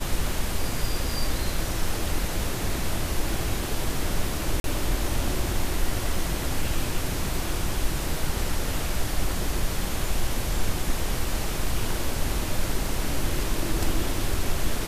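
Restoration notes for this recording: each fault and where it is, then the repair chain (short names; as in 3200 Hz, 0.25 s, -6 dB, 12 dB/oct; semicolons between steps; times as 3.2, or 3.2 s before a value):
4.6–4.64 gap 42 ms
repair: interpolate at 4.6, 42 ms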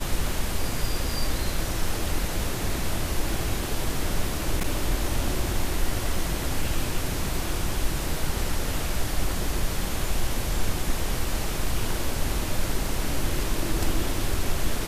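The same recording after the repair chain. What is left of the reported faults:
none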